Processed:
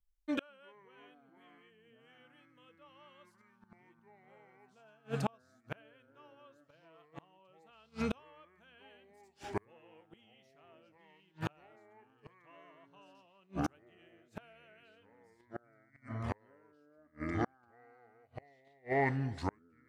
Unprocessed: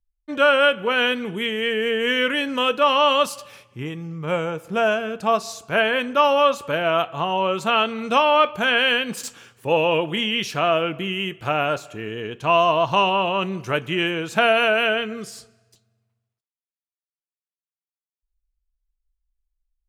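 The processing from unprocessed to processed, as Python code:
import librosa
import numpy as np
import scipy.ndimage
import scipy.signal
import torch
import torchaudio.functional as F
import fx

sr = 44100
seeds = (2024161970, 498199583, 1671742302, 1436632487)

y = fx.echo_pitch(x, sr, ms=89, semitones=-6, count=2, db_per_echo=-3.0)
y = fx.gate_flip(y, sr, shuts_db=-16.0, range_db=-39)
y = F.gain(torch.from_numpy(y), -4.5).numpy()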